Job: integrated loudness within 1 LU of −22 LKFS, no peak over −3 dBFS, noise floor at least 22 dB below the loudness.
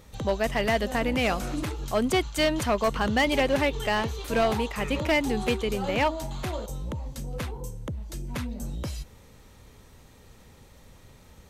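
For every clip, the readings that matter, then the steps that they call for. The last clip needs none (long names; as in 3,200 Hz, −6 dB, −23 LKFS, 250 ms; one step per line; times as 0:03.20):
share of clipped samples 0.6%; peaks flattened at −17.0 dBFS; integrated loudness −27.5 LKFS; sample peak −17.0 dBFS; target loudness −22.0 LKFS
→ clipped peaks rebuilt −17 dBFS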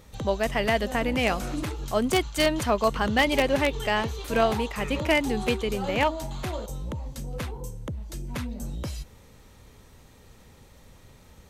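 share of clipped samples 0.0%; integrated loudness −26.5 LKFS; sample peak −8.0 dBFS; target loudness −22.0 LKFS
→ level +4.5 dB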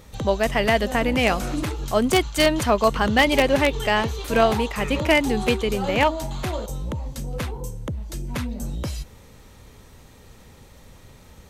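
integrated loudness −22.0 LKFS; sample peak −3.5 dBFS; background noise floor −48 dBFS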